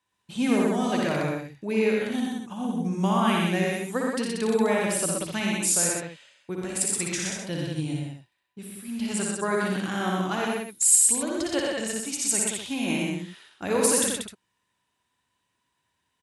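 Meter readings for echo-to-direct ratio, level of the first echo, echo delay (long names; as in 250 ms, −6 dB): 3.0 dB, −3.5 dB, 59 ms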